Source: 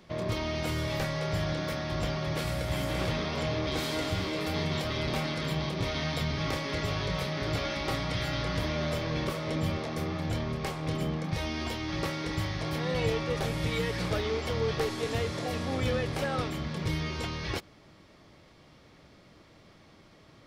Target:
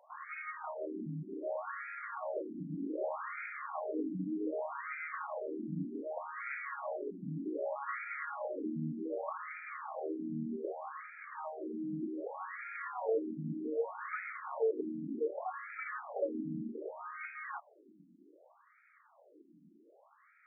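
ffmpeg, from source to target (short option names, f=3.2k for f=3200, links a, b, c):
-af "highpass=120,lowpass=2.5k,afftfilt=real='re*between(b*sr/1024,230*pow(1800/230,0.5+0.5*sin(2*PI*0.65*pts/sr))/1.41,230*pow(1800/230,0.5+0.5*sin(2*PI*0.65*pts/sr))*1.41)':imag='im*between(b*sr/1024,230*pow(1800/230,0.5+0.5*sin(2*PI*0.65*pts/sr))/1.41,230*pow(1800/230,0.5+0.5*sin(2*PI*0.65*pts/sr))*1.41)':win_size=1024:overlap=0.75,volume=1dB"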